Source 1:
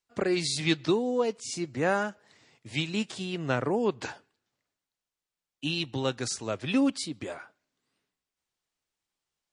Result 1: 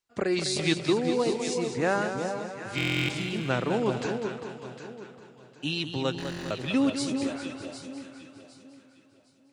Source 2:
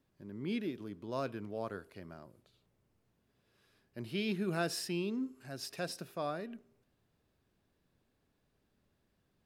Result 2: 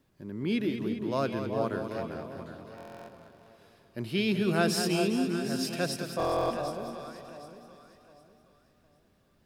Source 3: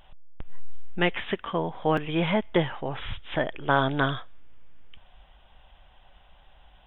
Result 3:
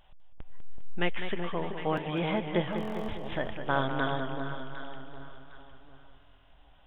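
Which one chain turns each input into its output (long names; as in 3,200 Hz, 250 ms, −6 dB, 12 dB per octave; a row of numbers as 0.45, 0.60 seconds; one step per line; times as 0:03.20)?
delay that swaps between a low-pass and a high-pass 379 ms, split 1,000 Hz, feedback 53%, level −6 dB
buffer that repeats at 0:02.76/0:06.18, samples 1,024, times 13
feedback echo with a swinging delay time 201 ms, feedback 61%, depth 66 cents, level −9 dB
normalise the peak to −12 dBFS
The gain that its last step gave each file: 0.0, +7.5, −6.5 decibels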